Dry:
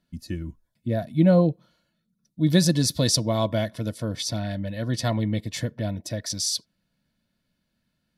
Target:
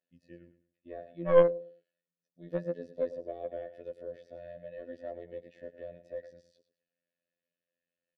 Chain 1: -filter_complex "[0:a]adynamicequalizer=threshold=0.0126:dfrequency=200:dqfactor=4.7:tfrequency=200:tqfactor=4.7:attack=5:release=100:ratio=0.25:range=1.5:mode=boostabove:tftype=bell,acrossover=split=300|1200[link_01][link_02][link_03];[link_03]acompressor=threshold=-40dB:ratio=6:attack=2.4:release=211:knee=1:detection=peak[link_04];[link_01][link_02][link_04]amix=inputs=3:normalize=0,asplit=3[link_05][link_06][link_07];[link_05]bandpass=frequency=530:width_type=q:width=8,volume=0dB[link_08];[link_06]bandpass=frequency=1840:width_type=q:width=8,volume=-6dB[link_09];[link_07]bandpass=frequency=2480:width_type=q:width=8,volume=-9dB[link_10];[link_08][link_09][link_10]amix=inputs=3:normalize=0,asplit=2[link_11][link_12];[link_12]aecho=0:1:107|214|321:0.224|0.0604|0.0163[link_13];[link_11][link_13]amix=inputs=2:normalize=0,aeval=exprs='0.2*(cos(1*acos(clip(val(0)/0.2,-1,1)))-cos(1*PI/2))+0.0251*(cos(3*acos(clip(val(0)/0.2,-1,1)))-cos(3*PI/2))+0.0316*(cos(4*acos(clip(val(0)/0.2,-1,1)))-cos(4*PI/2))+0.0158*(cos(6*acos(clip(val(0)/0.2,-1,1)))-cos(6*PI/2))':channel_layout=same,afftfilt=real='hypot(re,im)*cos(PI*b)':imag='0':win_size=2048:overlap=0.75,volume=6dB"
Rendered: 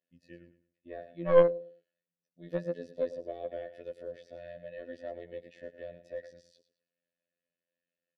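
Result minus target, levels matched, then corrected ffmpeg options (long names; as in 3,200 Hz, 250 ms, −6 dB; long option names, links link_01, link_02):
downward compressor: peak gain reduction −7 dB
-filter_complex "[0:a]adynamicequalizer=threshold=0.0126:dfrequency=200:dqfactor=4.7:tfrequency=200:tqfactor=4.7:attack=5:release=100:ratio=0.25:range=1.5:mode=boostabove:tftype=bell,acrossover=split=300|1200[link_01][link_02][link_03];[link_03]acompressor=threshold=-48.5dB:ratio=6:attack=2.4:release=211:knee=1:detection=peak[link_04];[link_01][link_02][link_04]amix=inputs=3:normalize=0,asplit=3[link_05][link_06][link_07];[link_05]bandpass=frequency=530:width_type=q:width=8,volume=0dB[link_08];[link_06]bandpass=frequency=1840:width_type=q:width=8,volume=-6dB[link_09];[link_07]bandpass=frequency=2480:width_type=q:width=8,volume=-9dB[link_10];[link_08][link_09][link_10]amix=inputs=3:normalize=0,asplit=2[link_11][link_12];[link_12]aecho=0:1:107|214|321:0.224|0.0604|0.0163[link_13];[link_11][link_13]amix=inputs=2:normalize=0,aeval=exprs='0.2*(cos(1*acos(clip(val(0)/0.2,-1,1)))-cos(1*PI/2))+0.0251*(cos(3*acos(clip(val(0)/0.2,-1,1)))-cos(3*PI/2))+0.0316*(cos(4*acos(clip(val(0)/0.2,-1,1)))-cos(4*PI/2))+0.0158*(cos(6*acos(clip(val(0)/0.2,-1,1)))-cos(6*PI/2))':channel_layout=same,afftfilt=real='hypot(re,im)*cos(PI*b)':imag='0':win_size=2048:overlap=0.75,volume=6dB"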